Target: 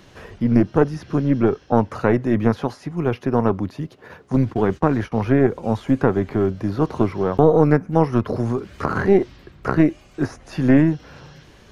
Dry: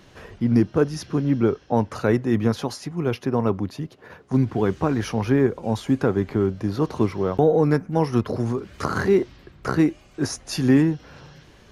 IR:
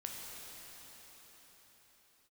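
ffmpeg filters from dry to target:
-filter_complex "[0:a]aeval=exprs='0.447*(cos(1*acos(clip(val(0)/0.447,-1,1)))-cos(1*PI/2))+0.112*(cos(2*acos(clip(val(0)/0.447,-1,1)))-cos(2*PI/2))':c=same,acrossover=split=2600[s0][s1];[s1]acompressor=threshold=0.00316:ratio=4:attack=1:release=60[s2];[s0][s2]amix=inputs=2:normalize=0,asettb=1/sr,asplit=3[s3][s4][s5];[s3]atrim=end=4.364[s6];[s4]atrim=start=4.36:end=5.12,asetpts=PTS-STARTPTS,afade=t=in:d=0.004:c=qsin,afade=t=out:st=0.756:d=0.004:c=qsin,agate=range=0.0631:threshold=0.0447:ratio=16:detection=peak[s7];[s5]atrim=start=5.116[s8];[s6][s7]acrossfade=d=0.004:c1=hsin:c2=qsin[s9];[s9][s8]acrossfade=d=0.004:c1=qsin:c2=hsin,volume=1.33"

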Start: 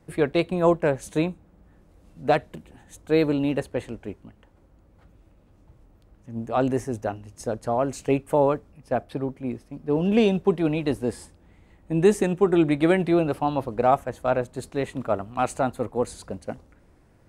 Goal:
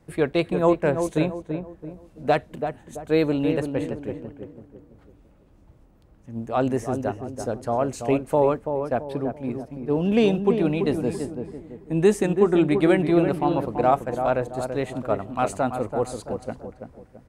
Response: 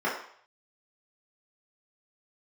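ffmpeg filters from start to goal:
-filter_complex "[0:a]asplit=2[s0][s1];[s1]adelay=334,lowpass=f=1100:p=1,volume=0.501,asplit=2[s2][s3];[s3]adelay=334,lowpass=f=1100:p=1,volume=0.41,asplit=2[s4][s5];[s5]adelay=334,lowpass=f=1100:p=1,volume=0.41,asplit=2[s6][s7];[s7]adelay=334,lowpass=f=1100:p=1,volume=0.41,asplit=2[s8][s9];[s9]adelay=334,lowpass=f=1100:p=1,volume=0.41[s10];[s0][s2][s4][s6][s8][s10]amix=inputs=6:normalize=0"

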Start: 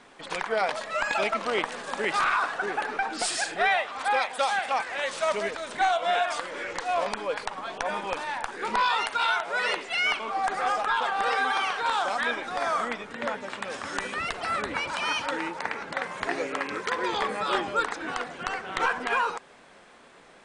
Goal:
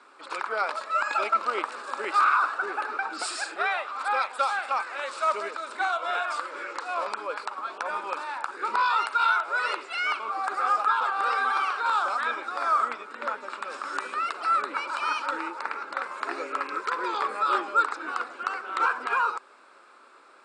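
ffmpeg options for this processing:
-filter_complex "[0:a]asettb=1/sr,asplit=3[s0][s1][s2];[s0]atrim=end=10.324[s3];[s1]atrim=start=10.32:end=11,asetpts=PTS-STARTPTS,afade=t=in:d=0.004:c=qsin,afade=t=out:st=0.676:d=0.004:c=qsin,acrusher=bits=7:mix=0:aa=0.5[s4];[s2]atrim=start=10.996[s5];[s3][s4]acrossfade=d=0.004:c1=hsin:c2=qsin[s6];[s6][s5]acrossfade=d=0.004:c1=qsin:c2=hsin,highpass=f=330:w=0.5412,highpass=f=330:w=1.3066,equalizer=f=470:t=q:w=4:g=-6,equalizer=f=710:t=q:w=4:g=-8,equalizer=f=1300:t=q:w=4:g=9,equalizer=f=1900:t=q:w=4:g=-9,equalizer=f=3200:t=q:w=4:g=-9,equalizer=f=6200:t=q:w=4:g=-10,lowpass=f=8500:w=0.5412,lowpass=f=8500:w=1.3066"

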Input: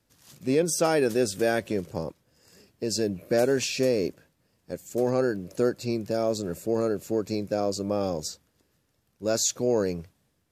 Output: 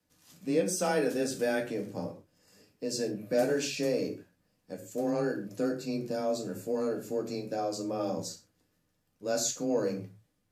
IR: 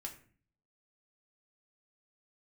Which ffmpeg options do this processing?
-filter_complex "[0:a]afreqshift=19[s0];[1:a]atrim=start_sample=2205,atrim=end_sample=6174,asetrate=39690,aresample=44100[s1];[s0][s1]afir=irnorm=-1:irlink=0,volume=0.75"

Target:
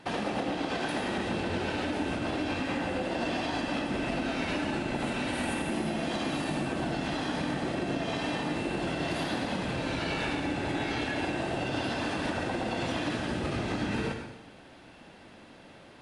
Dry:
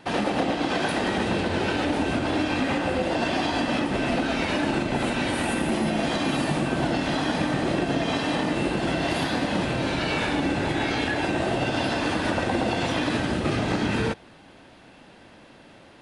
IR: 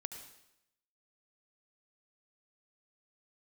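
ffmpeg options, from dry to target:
-filter_complex "[0:a]acompressor=threshold=0.0501:ratio=6[s0];[1:a]atrim=start_sample=2205,asetrate=41013,aresample=44100[s1];[s0][s1]afir=irnorm=-1:irlink=0"

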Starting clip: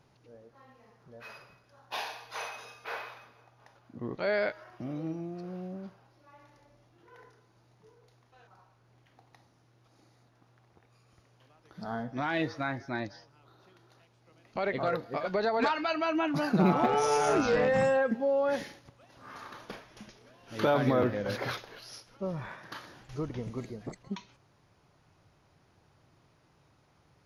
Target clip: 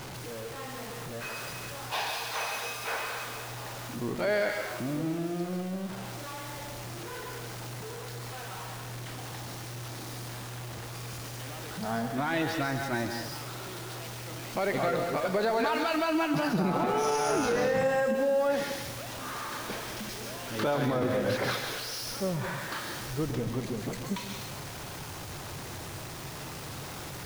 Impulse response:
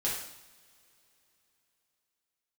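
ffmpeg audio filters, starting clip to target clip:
-filter_complex "[0:a]aeval=exprs='val(0)+0.5*0.0133*sgn(val(0))':c=same,asplit=2[s0][s1];[1:a]atrim=start_sample=2205,highshelf=f=4200:g=11.5,adelay=132[s2];[s1][s2]afir=irnorm=-1:irlink=0,volume=0.211[s3];[s0][s3]amix=inputs=2:normalize=0,alimiter=limit=0.0891:level=0:latency=1:release=66,volume=1.19"

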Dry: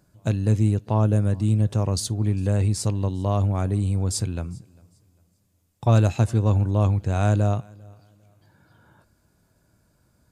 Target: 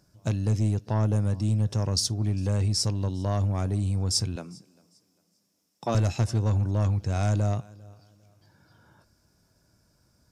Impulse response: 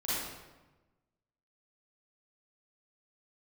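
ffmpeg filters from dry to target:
-filter_complex "[0:a]asettb=1/sr,asplit=3[s0][s1][s2];[s0]atrim=end=4.364[s3];[s1]atrim=start=4.36:end=5.95,asetpts=PTS-STARTPTS,afade=t=in:d=0.004:c=qsin,afade=t=out:st=1.586:d=0.004:c=qsin,highpass=f=180:w=0.5412,highpass=f=180:w=1.3066[s4];[s2]atrim=start=5.946[s5];[s3][s4]acrossfade=d=0.004:c1=hsin:c2=qsin[s6];[s6][s5]acrossfade=d=0.004:c1=qsin:c2=hsin,asoftclip=type=tanh:threshold=0.2,equalizer=f=5400:w=3.9:g=14,volume=0.75"

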